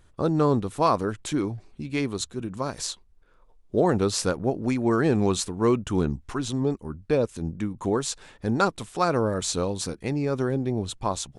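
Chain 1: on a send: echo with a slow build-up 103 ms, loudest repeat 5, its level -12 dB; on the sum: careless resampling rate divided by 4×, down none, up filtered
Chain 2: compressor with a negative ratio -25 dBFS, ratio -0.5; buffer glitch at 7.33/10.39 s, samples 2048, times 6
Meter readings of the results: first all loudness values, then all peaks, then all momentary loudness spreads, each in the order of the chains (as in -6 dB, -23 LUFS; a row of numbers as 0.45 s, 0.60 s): -24.5 LUFS, -28.5 LUFS; -7.5 dBFS, -8.0 dBFS; 7 LU, 8 LU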